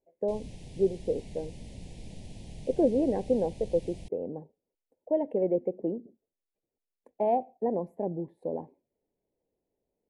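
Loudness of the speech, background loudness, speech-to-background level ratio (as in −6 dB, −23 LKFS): −31.0 LKFS, −47.0 LKFS, 16.0 dB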